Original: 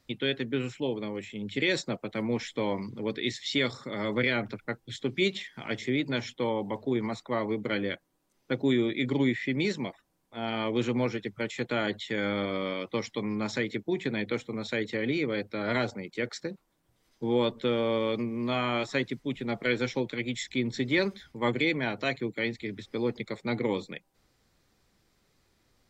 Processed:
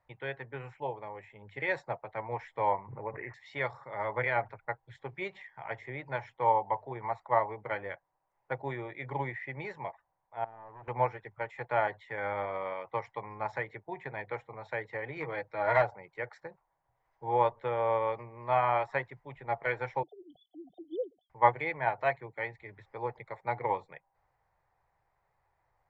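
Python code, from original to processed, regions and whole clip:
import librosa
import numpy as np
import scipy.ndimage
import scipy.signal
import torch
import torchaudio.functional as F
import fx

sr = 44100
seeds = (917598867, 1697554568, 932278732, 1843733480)

y = fx.chain(x, sr, fx.lowpass(hz=1300.0, slope=6),
    fx.resample_bad(factor=8, down='none', up='filtered'),
    fx.pre_swell(db_per_s=32.0), at=(2.78, 3.34))
y = fx.chain(y, sr, fx.bandpass_q(hz=160.0, q=0.97),
    fx.low_shelf(hz=160.0, db=-12.0),
    fx.clip_hard(threshold_db=-38.5), at=(10.44, 10.88))
y = fx.chain(y, sr, fx.lowpass_res(hz=6000.0, q=2.2),
    fx.comb(ms=6.3, depth=0.6),
    fx.clip_hard(threshold_db=-18.5), at=(15.16, 15.82))
y = fx.chain(y, sr, fx.sine_speech(),
    fx.brickwall_bandstop(low_hz=760.0, high_hz=3000.0), at=(20.03, 21.3))
y = fx.curve_eq(y, sr, hz=(140.0, 230.0, 880.0, 1300.0, 1900.0, 3400.0, 6900.0), db=(0, -19, 15, 2, 4, -15, -18))
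y = fx.upward_expand(y, sr, threshold_db=-34.0, expansion=1.5)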